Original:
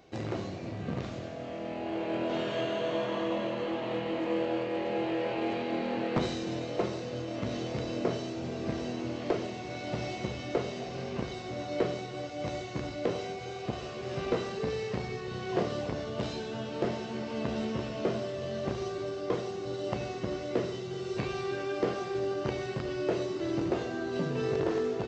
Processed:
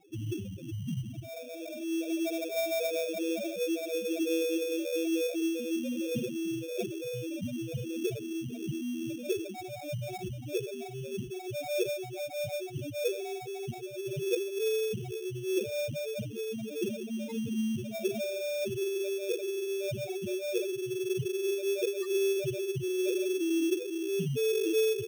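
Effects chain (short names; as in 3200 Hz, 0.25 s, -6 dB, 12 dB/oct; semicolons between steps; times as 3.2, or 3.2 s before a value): loudest bins only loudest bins 2; sample-rate reducer 3000 Hz, jitter 0%; gain +6 dB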